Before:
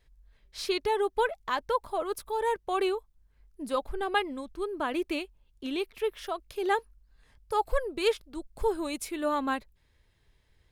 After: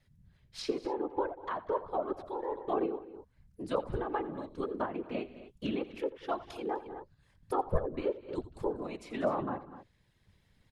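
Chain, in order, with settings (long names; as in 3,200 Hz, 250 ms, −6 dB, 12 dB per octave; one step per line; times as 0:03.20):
random phases in short frames
treble cut that deepens with the level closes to 890 Hz, closed at −25.5 dBFS
on a send: multi-tap delay 85/191/251 ms −17/−20/−16.5 dB
on the sum: sample-and-hold tremolo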